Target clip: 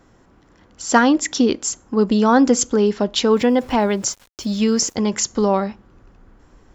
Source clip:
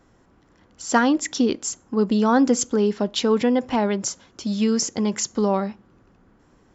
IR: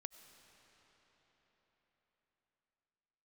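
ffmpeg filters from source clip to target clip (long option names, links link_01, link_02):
-filter_complex "[0:a]asplit=3[link_01][link_02][link_03];[link_01]afade=type=out:start_time=3.31:duration=0.02[link_04];[link_02]aeval=exprs='val(0)*gte(abs(val(0)),0.00531)':channel_layout=same,afade=type=in:start_time=3.31:duration=0.02,afade=type=out:start_time=4.94:duration=0.02[link_05];[link_03]afade=type=in:start_time=4.94:duration=0.02[link_06];[link_04][link_05][link_06]amix=inputs=3:normalize=0,asubboost=boost=3.5:cutoff=76,volume=4.5dB"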